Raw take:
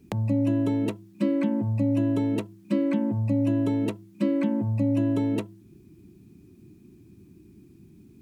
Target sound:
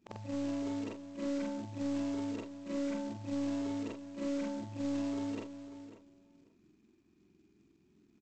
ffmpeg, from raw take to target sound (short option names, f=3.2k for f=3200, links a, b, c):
-filter_complex "[0:a]afftfilt=real='re':imag='-im':win_size=4096:overlap=0.75,asplit=2[a][b];[b]highpass=f=720:p=1,volume=13dB,asoftclip=type=tanh:threshold=-16.5dB[c];[a][c]amix=inputs=2:normalize=0,lowpass=f=1.9k:p=1,volume=-6dB,acrossover=split=230[d][e];[d]acontrast=64[f];[f][e]amix=inputs=2:normalize=0,equalizer=f=110:t=o:w=2:g=-13,asplit=2[g][h];[h]adelay=544,lowpass=f=2k:p=1,volume=-12dB,asplit=2[i][j];[j]adelay=544,lowpass=f=2k:p=1,volume=0.17[k];[g][i][k]amix=inputs=3:normalize=0,aresample=16000,acrusher=bits=4:mode=log:mix=0:aa=0.000001,aresample=44100,volume=-9dB"